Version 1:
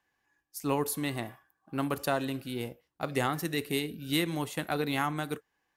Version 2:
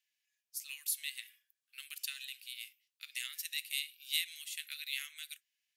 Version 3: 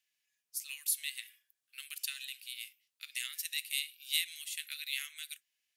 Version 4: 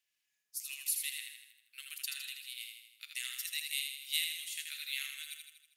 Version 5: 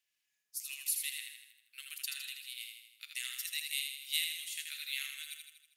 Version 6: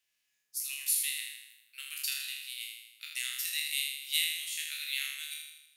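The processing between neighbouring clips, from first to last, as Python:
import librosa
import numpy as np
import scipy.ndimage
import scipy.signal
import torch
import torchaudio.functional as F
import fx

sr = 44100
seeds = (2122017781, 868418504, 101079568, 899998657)

y1 = scipy.signal.sosfilt(scipy.signal.butter(6, 2300.0, 'highpass', fs=sr, output='sos'), x)
y2 = fx.peak_eq(y1, sr, hz=9600.0, db=2.5, octaves=0.58)
y2 = y2 * librosa.db_to_amplitude(1.5)
y3 = fx.echo_feedback(y2, sr, ms=80, feedback_pct=55, wet_db=-5.0)
y3 = y3 * librosa.db_to_amplitude(-2.0)
y4 = y3
y5 = fx.spec_trails(y4, sr, decay_s=0.76)
y5 = y5 * librosa.db_to_amplitude(2.0)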